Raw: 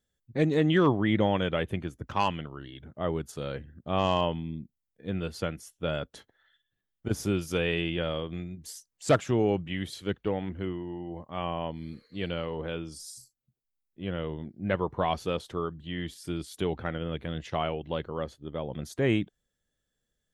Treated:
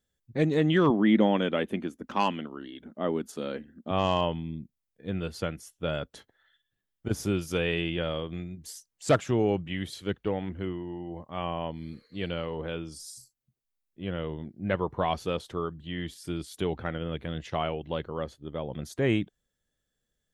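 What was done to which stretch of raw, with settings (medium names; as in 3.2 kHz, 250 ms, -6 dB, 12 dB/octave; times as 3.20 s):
0.90–3.91 s: resonant low shelf 160 Hz -11.5 dB, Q 3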